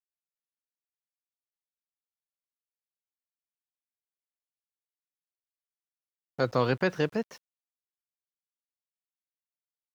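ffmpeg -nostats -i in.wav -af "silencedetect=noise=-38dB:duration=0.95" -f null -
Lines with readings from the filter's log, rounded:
silence_start: 0.00
silence_end: 6.39 | silence_duration: 6.39
silence_start: 7.35
silence_end: 9.94 | silence_duration: 2.59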